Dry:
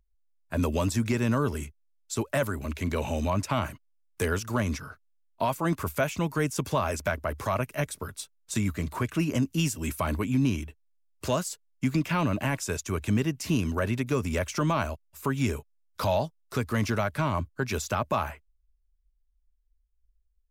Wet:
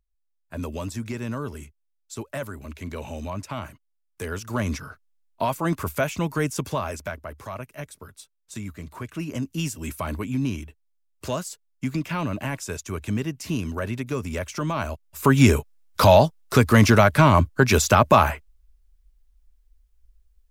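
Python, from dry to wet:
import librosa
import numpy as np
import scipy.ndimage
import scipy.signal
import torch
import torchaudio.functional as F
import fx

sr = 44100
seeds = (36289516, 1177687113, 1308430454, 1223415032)

y = fx.gain(x, sr, db=fx.line((4.23, -5.0), (4.66, 2.5), (6.51, 2.5), (7.36, -7.0), (8.88, -7.0), (9.65, -1.0), (14.73, -1.0), (15.34, 12.0)))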